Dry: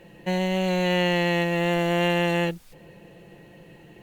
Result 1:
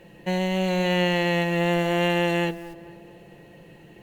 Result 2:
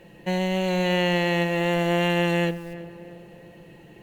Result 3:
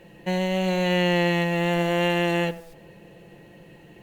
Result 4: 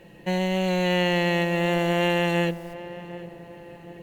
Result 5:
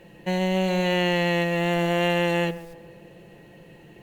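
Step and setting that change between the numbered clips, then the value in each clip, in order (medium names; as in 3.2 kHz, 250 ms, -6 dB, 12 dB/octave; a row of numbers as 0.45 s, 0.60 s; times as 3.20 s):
tape echo, time: 225 ms, 332 ms, 92 ms, 755 ms, 139 ms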